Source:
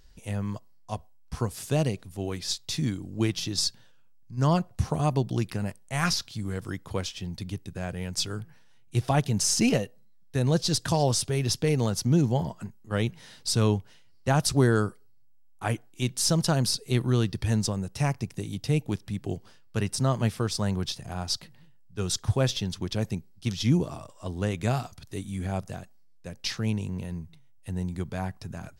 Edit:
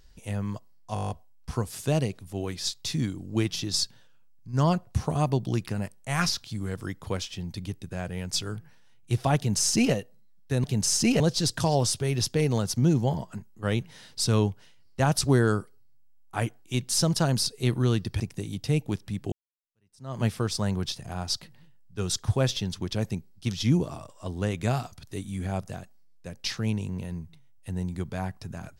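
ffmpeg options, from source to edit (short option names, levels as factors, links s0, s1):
-filter_complex "[0:a]asplit=13[s0][s1][s2][s3][s4][s5][s6][s7][s8][s9][s10][s11][s12];[s0]atrim=end=0.962[s13];[s1]atrim=start=0.938:end=0.962[s14];[s2]atrim=start=0.938:end=0.962[s15];[s3]atrim=start=0.938:end=0.962[s16];[s4]atrim=start=0.938:end=0.962[s17];[s5]atrim=start=0.938:end=0.962[s18];[s6]atrim=start=0.938:end=0.962[s19];[s7]atrim=start=0.938:end=0.962[s20];[s8]atrim=start=0.938:end=10.482[s21];[s9]atrim=start=9.208:end=9.772[s22];[s10]atrim=start=10.478:end=17.482[s23];[s11]atrim=start=18.198:end=19.32,asetpts=PTS-STARTPTS,afade=t=out:st=1.118:d=0.004:c=hsin[s24];[s12]atrim=start=19.32,asetpts=PTS-STARTPTS,afade=t=in:d=0.88:c=exp[s25];[s13][s14]acrossfade=d=0.004:c1=hsin:c2=hsin[s26];[s26][s15]acrossfade=d=0.004:c1=hsin:c2=hsin[s27];[s27][s16]acrossfade=d=0.004:c1=hsin:c2=hsin[s28];[s28][s17]acrossfade=d=0.004:c1=hsin:c2=hsin[s29];[s29][s18]acrossfade=d=0.004:c1=hsin:c2=hsin[s30];[s30][s19]acrossfade=d=0.004:c1=hsin:c2=hsin[s31];[s31][s20]acrossfade=d=0.004:c1=hsin:c2=hsin[s32];[s32][s21]acrossfade=d=0.004:c1=hsin:c2=hsin[s33];[s33][s22]acrossfade=d=0.004:c1=hsin:c2=hsin[s34];[s34][s23]acrossfade=d=0.004:c1=hsin:c2=hsin[s35];[s24][s25]concat=n=2:v=0:a=1[s36];[s35][s36]acrossfade=d=0.004:c1=hsin:c2=hsin"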